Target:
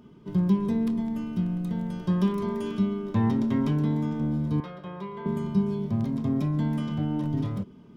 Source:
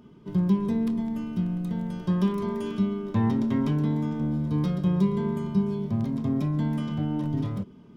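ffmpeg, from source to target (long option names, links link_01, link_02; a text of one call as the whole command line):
ffmpeg -i in.wav -filter_complex "[0:a]asettb=1/sr,asplit=3[link_01][link_02][link_03];[link_01]atrim=end=4.604[link_04];[link_02]atrim=start=4.6:end=5.26,asetpts=PTS-STARTPTS,afade=type=in:duration=0.004:curve=qsin,afade=type=out:start_time=0.656:duration=0.004:curve=qsin,acrossover=split=500 3200:gain=0.126 1 0.112[link_05][link_06][link_07];[link_05][link_06][link_07]amix=inputs=3:normalize=0[link_08];[link_03]atrim=start=5.256[link_09];[link_04][link_08]acrossfade=duration=0.004:curve1=hsin:curve2=qsin[link_10];[link_10][link_09]acrossfade=duration=0.004:curve1=qsin:curve2=hsin" out.wav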